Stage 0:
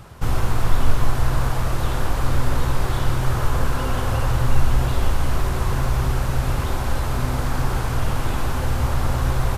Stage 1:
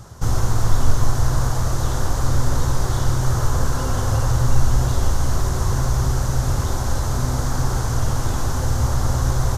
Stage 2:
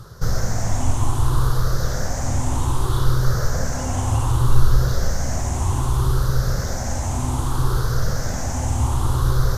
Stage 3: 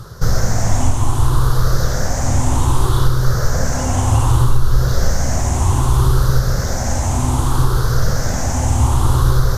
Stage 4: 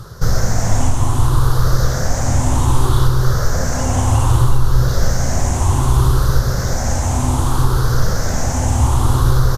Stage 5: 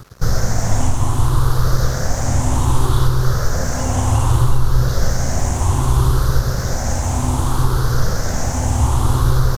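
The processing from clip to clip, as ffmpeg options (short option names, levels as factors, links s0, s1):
-af "equalizer=f=100:t=o:w=0.67:g=5,equalizer=f=2500:t=o:w=0.67:g=-10,equalizer=f=6300:t=o:w=0.67:g=11"
-af "afftfilt=real='re*pow(10,10/40*sin(2*PI*(0.61*log(max(b,1)*sr/1024/100)/log(2)-(0.64)*(pts-256)/sr)))':imag='im*pow(10,10/40*sin(2*PI*(0.61*log(max(b,1)*sr/1024/100)/log(2)-(0.64)*(pts-256)/sr)))':win_size=1024:overlap=0.75,areverse,acompressor=mode=upward:threshold=0.0562:ratio=2.5,areverse,volume=0.794"
-af "alimiter=limit=0.376:level=0:latency=1:release=491,volume=2"
-filter_complex "[0:a]asplit=2[s0][s1];[s1]adelay=355.7,volume=0.316,highshelf=f=4000:g=-8[s2];[s0][s2]amix=inputs=2:normalize=0"
-af "aeval=exprs='sgn(val(0))*max(abs(val(0))-0.015,0)':c=same,volume=0.891"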